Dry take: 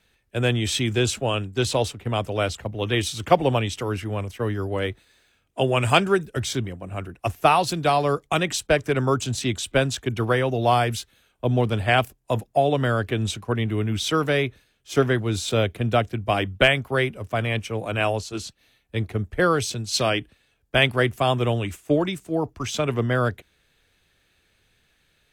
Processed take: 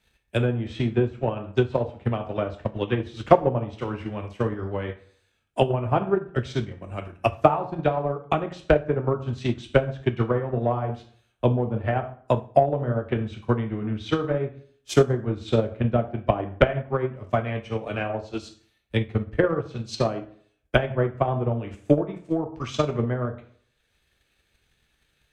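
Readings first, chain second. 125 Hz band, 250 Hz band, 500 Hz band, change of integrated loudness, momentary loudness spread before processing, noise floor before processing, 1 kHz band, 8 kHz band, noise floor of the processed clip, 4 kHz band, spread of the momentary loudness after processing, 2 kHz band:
-1.0 dB, -0.5 dB, -0.5 dB, -2.0 dB, 9 LU, -66 dBFS, -3.0 dB, under -15 dB, -70 dBFS, -11.5 dB, 9 LU, -8.0 dB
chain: low-pass that closes with the level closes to 870 Hz, closed at -18 dBFS; plate-style reverb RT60 0.57 s, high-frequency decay 0.75×, DRR 2.5 dB; transient shaper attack +10 dB, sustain -4 dB; trim -6 dB

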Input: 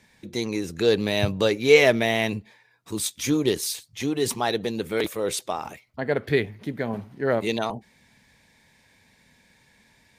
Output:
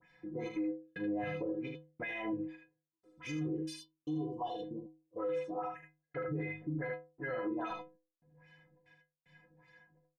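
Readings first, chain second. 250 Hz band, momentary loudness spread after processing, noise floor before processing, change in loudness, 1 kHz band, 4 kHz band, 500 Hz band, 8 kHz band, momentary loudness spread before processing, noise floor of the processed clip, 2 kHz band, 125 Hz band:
-10.5 dB, 9 LU, -61 dBFS, -15.5 dB, -11.5 dB, -25.0 dB, -17.5 dB, -29.0 dB, 14 LU, under -85 dBFS, -16.5 dB, -12.5 dB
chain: phase dispersion highs, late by 41 ms, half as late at 2 kHz; LFO low-pass sine 2.5 Hz 300–3400 Hz; bass shelf 470 Hz -4 dB; in parallel at 0 dB: compression, threshold -33 dBFS, peak gain reduction 21 dB; on the sum: trance gate "xxxxxx.x....x" 188 bpm -60 dB; inharmonic resonator 150 Hz, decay 0.45 s, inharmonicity 0.03; on a send: early reflections 39 ms -8 dB, 77 ms -5.5 dB; on the sum: peak limiter -32.5 dBFS, peak gain reduction 11 dB; peaking EQ 3.9 kHz -13.5 dB 0.89 oct; time-frequency box 3.80–5.18 s, 1.2–2.7 kHz -27 dB; trim +3.5 dB

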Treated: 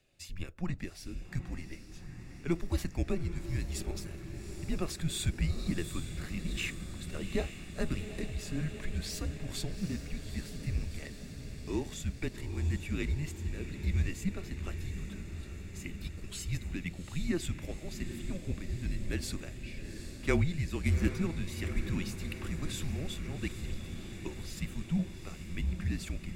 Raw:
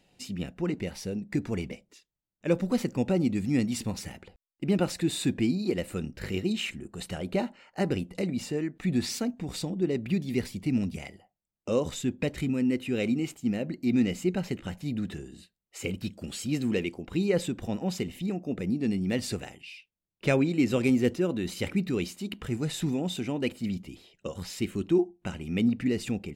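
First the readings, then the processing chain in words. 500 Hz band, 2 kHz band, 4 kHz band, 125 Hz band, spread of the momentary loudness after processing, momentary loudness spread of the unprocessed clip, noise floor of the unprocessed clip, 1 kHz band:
-11.5 dB, -4.0 dB, -5.5 dB, -1.5 dB, 11 LU, 11 LU, under -85 dBFS, -8.0 dB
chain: treble shelf 8.6 kHz +4.5 dB; random-step tremolo; echo that smears into a reverb 798 ms, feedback 72%, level -9.5 dB; frequency shift -170 Hz; trim -3.5 dB

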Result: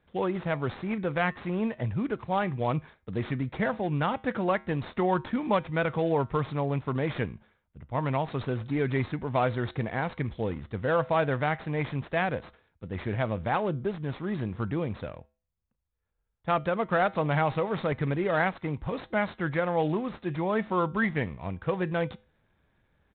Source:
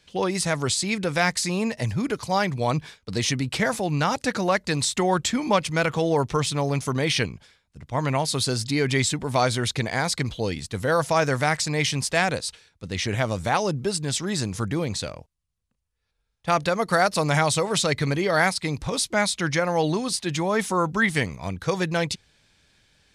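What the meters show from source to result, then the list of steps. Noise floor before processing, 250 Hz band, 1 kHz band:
-75 dBFS, -3.5 dB, -4.5 dB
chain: median filter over 15 samples; feedback comb 72 Hz, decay 0.37 s, harmonics odd, mix 40%; resampled via 8 kHz

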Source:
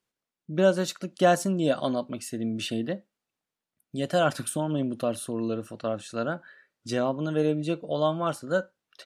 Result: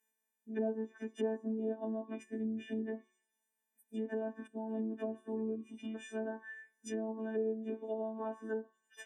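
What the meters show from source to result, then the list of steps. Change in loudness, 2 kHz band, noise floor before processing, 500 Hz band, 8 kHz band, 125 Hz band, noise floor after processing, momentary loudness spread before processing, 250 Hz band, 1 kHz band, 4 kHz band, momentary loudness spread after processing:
-11.5 dB, -15.0 dB, under -85 dBFS, -11.5 dB, -20.5 dB, under -15 dB, under -85 dBFS, 11 LU, -9.0 dB, -17.5 dB, -22.5 dB, 8 LU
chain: partials quantised in pitch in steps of 3 st; peaking EQ 9.9 kHz -6 dB 1.6 oct; time-frequency box 5.55–5.95 s, 360–1800 Hz -24 dB; robot voice 220 Hz; in parallel at +2 dB: compression 10:1, threshold -34 dBFS, peak gain reduction 17 dB; on the sum: peaking EQ 250 Hz +11 dB 0.21 oct; static phaser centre 850 Hz, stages 8; de-hum 184.2 Hz, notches 31; on a send: feedback echo behind a high-pass 101 ms, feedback 53%, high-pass 5.3 kHz, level -15.5 dB; on the sum: low-pass that closes with the level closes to 510 Hz, closed at -26 dBFS; high-pass 110 Hz; trim -6 dB

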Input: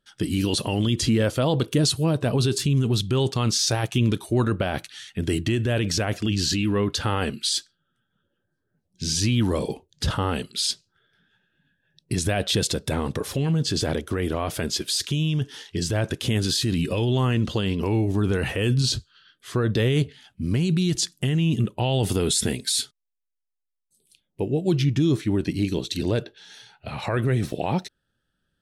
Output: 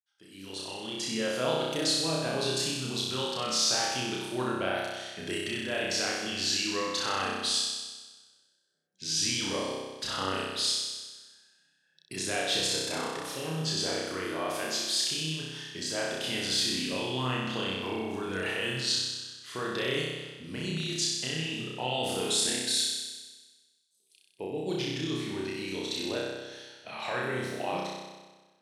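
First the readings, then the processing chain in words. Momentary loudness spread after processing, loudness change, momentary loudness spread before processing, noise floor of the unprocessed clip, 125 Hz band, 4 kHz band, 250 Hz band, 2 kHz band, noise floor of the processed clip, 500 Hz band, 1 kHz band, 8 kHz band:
12 LU, -6.0 dB, 7 LU, -77 dBFS, -17.5 dB, -1.5 dB, -11.5 dB, -1.0 dB, -69 dBFS, -6.5 dB, -2.5 dB, -2.5 dB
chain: fade-in on the opening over 1.49 s; frequency weighting A; flutter echo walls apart 5.4 m, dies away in 1.3 s; trim -7.5 dB

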